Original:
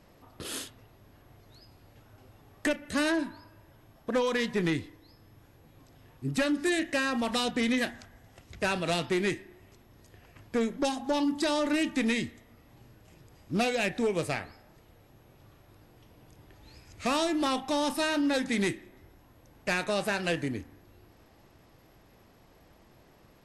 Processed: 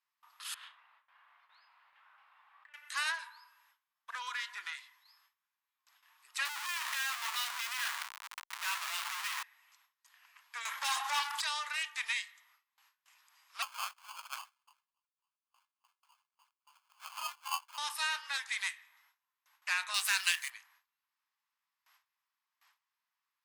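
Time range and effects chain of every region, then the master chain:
0.54–2.74 s: compressor with a negative ratio -42 dBFS + distance through air 500 m + flutter echo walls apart 5.9 m, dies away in 0.22 s
4.15–4.77 s: compression 2.5:1, threshold -30 dBFS + small resonant body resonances 360/1400 Hz, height 15 dB, ringing for 70 ms + tape noise reduction on one side only decoder only
6.45–9.43 s: low-pass 3.8 kHz + Schmitt trigger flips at -50 dBFS
10.65–11.41 s: peaking EQ 11 kHz +13.5 dB 1.7 oct + overdrive pedal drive 31 dB, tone 1.4 kHz, clips at -13.5 dBFS + high-pass 440 Hz 6 dB/octave
13.62–17.78 s: LFO high-pass sine 3.5 Hz 840–6300 Hz + static phaser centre 1.3 kHz, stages 6 + sample-rate reducer 1.9 kHz
19.94–20.50 s: companding laws mixed up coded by A + tilt EQ +4.5 dB/octave
whole clip: elliptic high-pass 1 kHz, stop band 70 dB; gate with hold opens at -55 dBFS; trim -1.5 dB

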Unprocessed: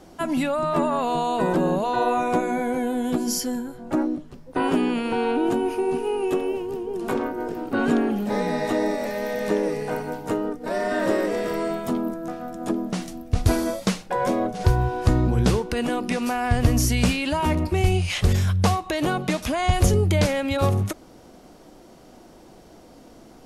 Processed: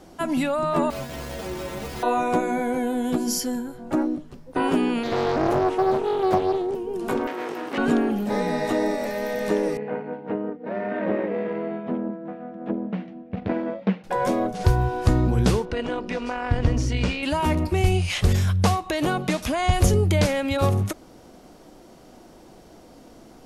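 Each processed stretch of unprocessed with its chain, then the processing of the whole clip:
0.90–2.03 s: low-pass 1.7 kHz + Schmitt trigger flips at -24.5 dBFS + inharmonic resonator 67 Hz, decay 0.37 s, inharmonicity 0.008
5.03–6.75 s: Chebyshev low-pass 8.9 kHz, order 8 + peaking EQ 370 Hz +6.5 dB 0.27 oct + loudspeaker Doppler distortion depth 0.9 ms
7.27–7.78 s: comb filter that takes the minimum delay 0.33 ms + frequency weighting A + level flattener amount 50%
9.77–14.04 s: valve stage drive 14 dB, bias 0.8 + cabinet simulation 160–2600 Hz, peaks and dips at 200 Hz +10 dB, 490 Hz +5 dB, 1.2 kHz -5 dB
15.65–17.23 s: Gaussian low-pass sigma 1.5 samples + comb 2.1 ms, depth 32% + AM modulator 200 Hz, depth 40%
whole clip: none

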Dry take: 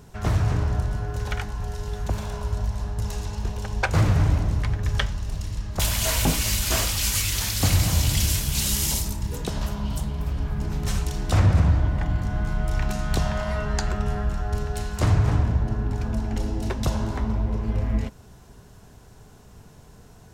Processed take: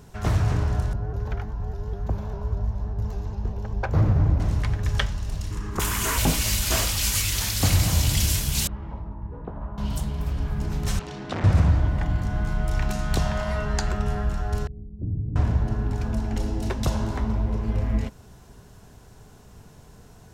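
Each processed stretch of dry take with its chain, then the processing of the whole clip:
0.93–4.40 s: boxcar filter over 5 samples + peaking EQ 3.1 kHz -12.5 dB 2.5 oct + vibrato with a chosen wave saw up 5 Hz, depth 100 cents
5.51–6.18 s: FFT filter 120 Hz 0 dB, 410 Hz +12 dB, 610 Hz -6 dB, 1.1 kHz +11 dB, 2.8 kHz +1 dB, 4.2 kHz -4 dB, 6.8 kHz +2 dB + compression 1.5:1, threshold -26 dBFS
8.67–9.78 s: four-pole ladder low-pass 1.4 kHz, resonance 30% + doubling 18 ms -11 dB
10.99–11.44 s: hard clipper -21 dBFS + band-pass 170–3700 Hz
14.67–15.36 s: inverse Chebyshev low-pass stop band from 1.7 kHz, stop band 80 dB + bass shelf 220 Hz -10.5 dB
whole clip: none

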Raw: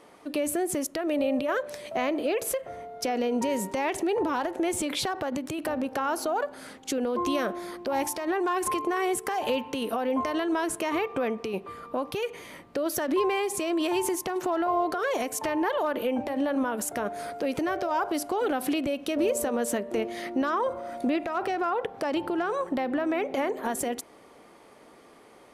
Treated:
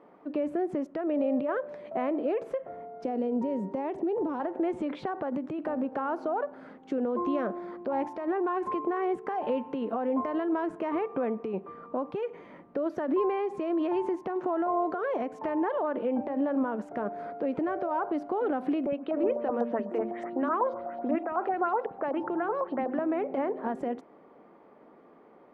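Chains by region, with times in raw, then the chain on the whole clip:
3.04–4.40 s: peaking EQ 1.8 kHz -8.5 dB 2.3 oct + three bands compressed up and down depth 40%
18.86–22.99 s: three bands offset in time mids, lows, highs 60/540 ms, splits 250/4100 Hz + LFO low-pass saw up 8 Hz 740–7600 Hz
whole clip: low-pass 1.3 kHz 12 dB/octave; resonant low shelf 130 Hz -8.5 dB, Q 1.5; trim -2 dB

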